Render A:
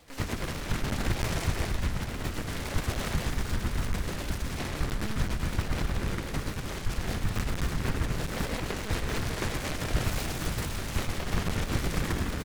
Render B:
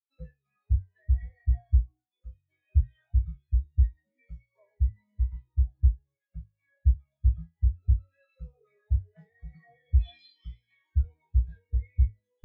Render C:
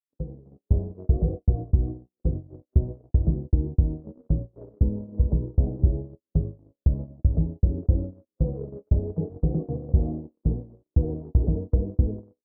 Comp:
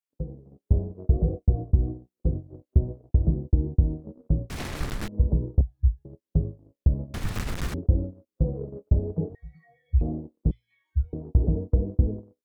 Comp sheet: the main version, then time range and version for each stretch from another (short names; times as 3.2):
C
4.5–5.08 from A
5.61–6.05 from B
7.14–7.74 from A
9.35–10.01 from B
10.51–11.13 from B